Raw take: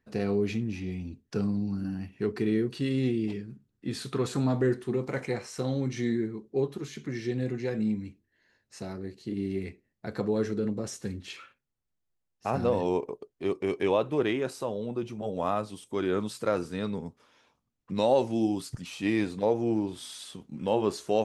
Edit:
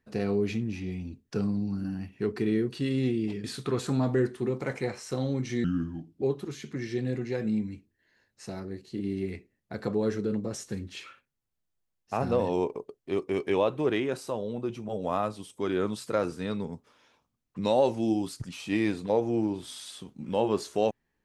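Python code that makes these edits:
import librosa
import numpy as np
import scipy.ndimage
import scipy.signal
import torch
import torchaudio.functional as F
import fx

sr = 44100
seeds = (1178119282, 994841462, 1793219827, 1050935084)

y = fx.edit(x, sr, fx.cut(start_s=3.44, length_s=0.47),
    fx.speed_span(start_s=6.11, length_s=0.44, speed=0.76), tone=tone)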